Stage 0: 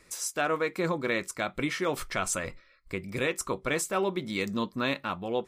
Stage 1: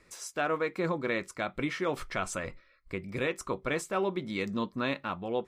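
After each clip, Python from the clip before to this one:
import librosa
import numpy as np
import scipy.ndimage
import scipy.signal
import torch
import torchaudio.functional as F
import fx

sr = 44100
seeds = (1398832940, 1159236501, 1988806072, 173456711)

y = fx.lowpass(x, sr, hz=3300.0, slope=6)
y = F.gain(torch.from_numpy(y), -1.5).numpy()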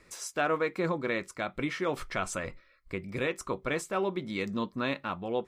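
y = fx.rider(x, sr, range_db=10, speed_s=2.0)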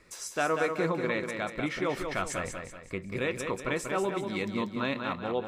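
y = fx.echo_feedback(x, sr, ms=189, feedback_pct=42, wet_db=-6)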